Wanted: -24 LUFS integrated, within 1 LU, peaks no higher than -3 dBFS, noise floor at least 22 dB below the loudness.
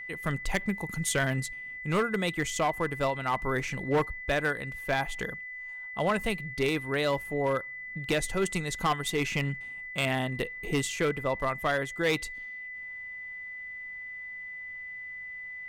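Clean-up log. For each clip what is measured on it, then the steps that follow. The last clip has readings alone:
clipped samples 0.8%; clipping level -20.5 dBFS; steady tone 2 kHz; tone level -38 dBFS; loudness -31.0 LUFS; peak level -20.5 dBFS; loudness target -24.0 LUFS
-> clip repair -20.5 dBFS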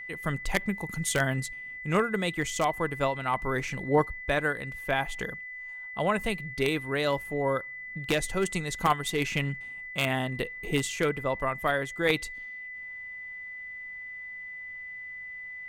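clipped samples 0.0%; steady tone 2 kHz; tone level -38 dBFS
-> band-stop 2 kHz, Q 30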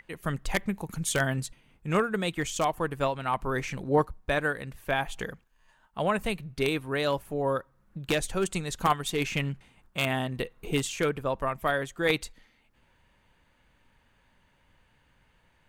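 steady tone not found; loudness -29.5 LUFS; peak level -11.0 dBFS; loudness target -24.0 LUFS
-> trim +5.5 dB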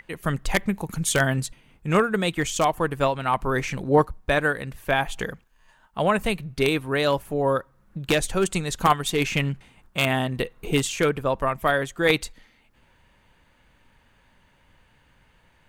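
loudness -24.0 LUFS; peak level -5.5 dBFS; noise floor -61 dBFS

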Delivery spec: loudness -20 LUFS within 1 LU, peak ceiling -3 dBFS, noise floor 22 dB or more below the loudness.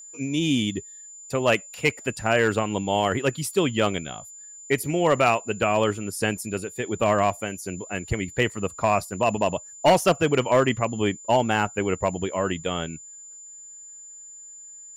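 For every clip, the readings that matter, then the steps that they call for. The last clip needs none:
clipped samples 0.3%; clipping level -11.5 dBFS; steady tone 7.1 kHz; tone level -41 dBFS; loudness -24.0 LUFS; peak level -11.5 dBFS; loudness target -20.0 LUFS
-> clip repair -11.5 dBFS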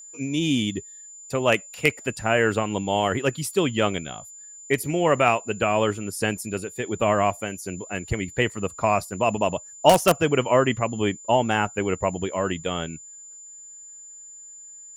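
clipped samples 0.0%; steady tone 7.1 kHz; tone level -41 dBFS
-> band-stop 7.1 kHz, Q 30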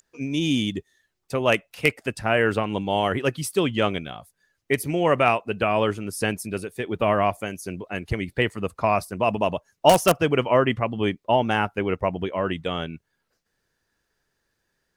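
steady tone not found; loudness -23.5 LUFS; peak level -2.5 dBFS; loudness target -20.0 LUFS
-> trim +3.5 dB; peak limiter -3 dBFS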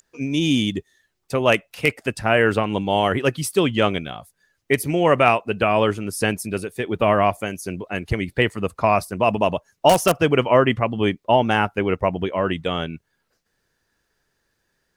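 loudness -20.5 LUFS; peak level -3.0 dBFS; noise floor -73 dBFS

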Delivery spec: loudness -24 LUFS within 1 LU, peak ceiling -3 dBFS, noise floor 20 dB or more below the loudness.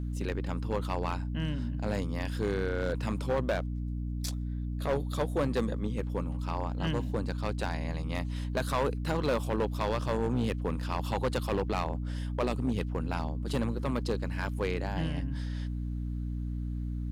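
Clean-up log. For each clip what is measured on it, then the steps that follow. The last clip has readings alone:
clipped samples 1.7%; clipping level -23.0 dBFS; hum 60 Hz; highest harmonic 300 Hz; hum level -32 dBFS; loudness -32.5 LUFS; peak level -23.0 dBFS; loudness target -24.0 LUFS
-> clip repair -23 dBFS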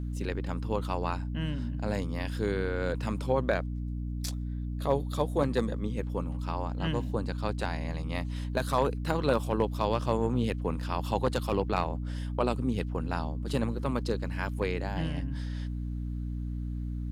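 clipped samples 0.0%; hum 60 Hz; highest harmonic 300 Hz; hum level -31 dBFS
-> hum notches 60/120/180/240/300 Hz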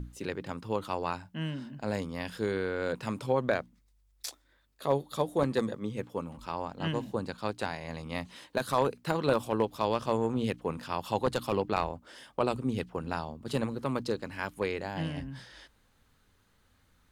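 hum not found; loudness -33.0 LUFS; peak level -13.0 dBFS; loudness target -24.0 LUFS
-> trim +9 dB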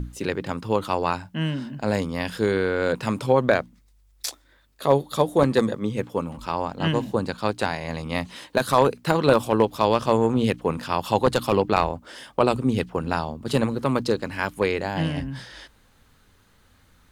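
loudness -24.0 LUFS; peak level -4.0 dBFS; noise floor -59 dBFS

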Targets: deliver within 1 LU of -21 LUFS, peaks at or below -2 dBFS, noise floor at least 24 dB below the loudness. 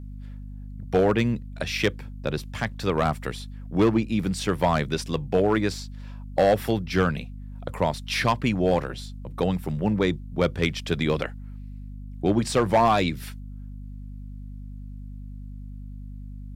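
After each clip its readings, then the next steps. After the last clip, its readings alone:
clipped samples 0.4%; clipping level -12.5 dBFS; hum 50 Hz; highest harmonic 250 Hz; hum level -35 dBFS; loudness -25.0 LUFS; peak level -12.5 dBFS; loudness target -21.0 LUFS
-> clip repair -12.5 dBFS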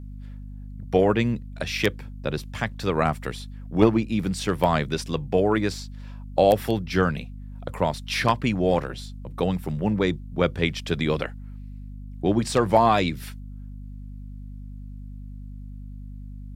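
clipped samples 0.0%; hum 50 Hz; highest harmonic 150 Hz; hum level -35 dBFS
-> hum notches 50/100/150 Hz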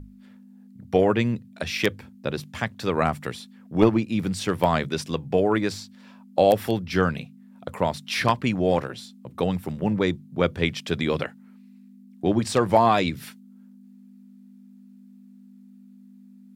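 hum not found; loudness -24.5 LUFS; peak level -3.5 dBFS; loudness target -21.0 LUFS
-> trim +3.5 dB; peak limiter -2 dBFS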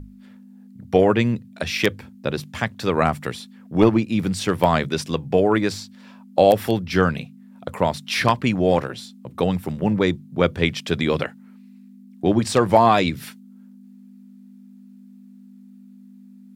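loudness -21.0 LUFS; peak level -2.0 dBFS; noise floor -46 dBFS

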